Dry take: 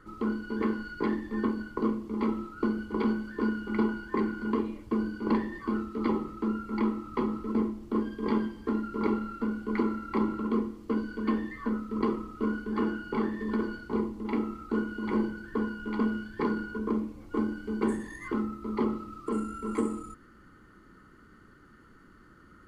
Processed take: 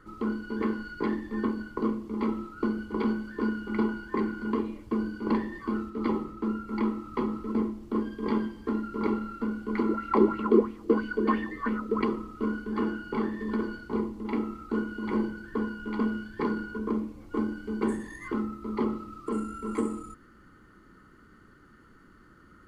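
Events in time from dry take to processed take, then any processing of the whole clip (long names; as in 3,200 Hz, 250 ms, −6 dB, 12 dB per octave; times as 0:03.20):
0:05.90–0:06.68: one half of a high-frequency compander decoder only
0:09.89–0:12.04: auto-filter bell 3 Hz 350–2,800 Hz +15 dB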